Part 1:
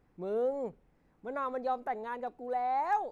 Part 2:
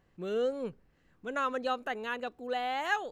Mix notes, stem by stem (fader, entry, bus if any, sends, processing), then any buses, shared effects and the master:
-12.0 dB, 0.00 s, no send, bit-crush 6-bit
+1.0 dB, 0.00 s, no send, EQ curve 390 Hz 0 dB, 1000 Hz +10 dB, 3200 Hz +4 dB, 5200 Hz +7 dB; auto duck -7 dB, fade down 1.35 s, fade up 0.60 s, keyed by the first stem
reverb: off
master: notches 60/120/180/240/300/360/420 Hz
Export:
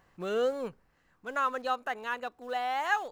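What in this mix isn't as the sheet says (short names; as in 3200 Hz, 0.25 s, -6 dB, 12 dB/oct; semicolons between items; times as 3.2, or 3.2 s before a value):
stem 1 -12.0 dB -> -20.5 dB; master: missing notches 60/120/180/240/300/360/420 Hz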